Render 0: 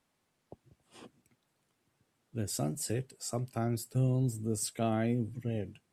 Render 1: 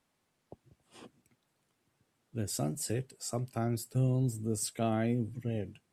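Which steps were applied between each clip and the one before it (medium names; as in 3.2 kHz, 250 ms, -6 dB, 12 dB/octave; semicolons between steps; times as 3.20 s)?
no audible change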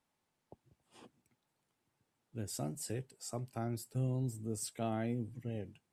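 peaking EQ 870 Hz +5.5 dB 0.23 oct; trim -6 dB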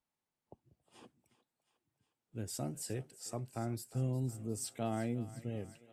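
spectral noise reduction 9 dB; thinning echo 359 ms, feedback 68%, high-pass 580 Hz, level -15.5 dB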